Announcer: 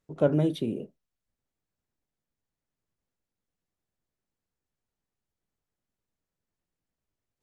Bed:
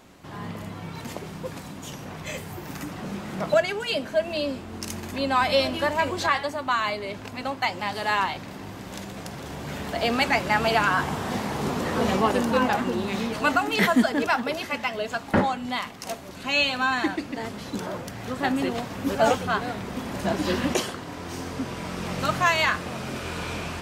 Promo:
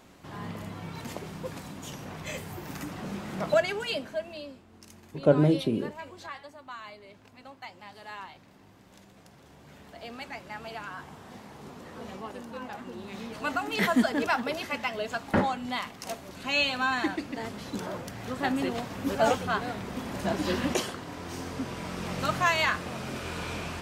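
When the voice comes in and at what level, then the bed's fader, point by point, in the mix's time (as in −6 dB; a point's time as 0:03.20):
5.05 s, +2.5 dB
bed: 0:03.83 −3 dB
0:04.64 −18 dB
0:12.58 −18 dB
0:13.99 −3.5 dB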